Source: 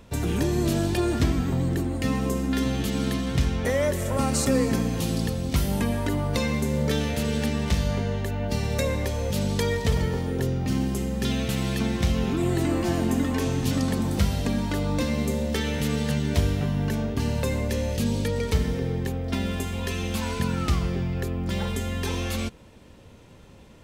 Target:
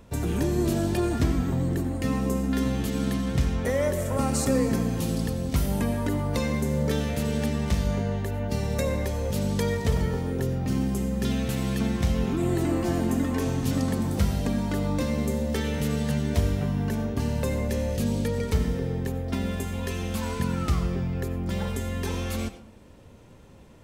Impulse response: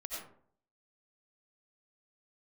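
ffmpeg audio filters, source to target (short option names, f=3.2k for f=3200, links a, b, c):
-filter_complex "[0:a]equalizer=f=3.4k:t=o:w=1.8:g=-4.5,asplit=2[a][b];[1:a]atrim=start_sample=2205[c];[b][c]afir=irnorm=-1:irlink=0,volume=-8.5dB[d];[a][d]amix=inputs=2:normalize=0,volume=-2.5dB"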